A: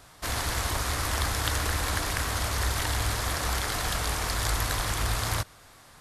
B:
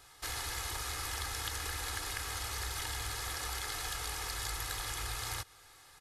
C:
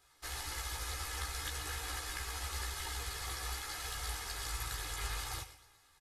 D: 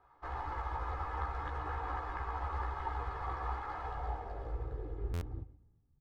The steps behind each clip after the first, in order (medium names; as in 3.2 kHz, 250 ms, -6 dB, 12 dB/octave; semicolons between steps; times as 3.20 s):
tilt shelf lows -4 dB; comb 2.4 ms, depth 60%; compression 2:1, threshold -30 dBFS, peak gain reduction 6 dB; trim -8 dB
feedback delay 120 ms, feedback 47%, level -9 dB; chorus voices 4, 0.72 Hz, delay 15 ms, depth 2.5 ms; upward expansion 1.5:1, over -53 dBFS; trim +1.5 dB
low-pass sweep 1 kHz -> 180 Hz, 3.78–5.88 s; buffer glitch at 5.13 s, samples 512, times 6; trim +3.5 dB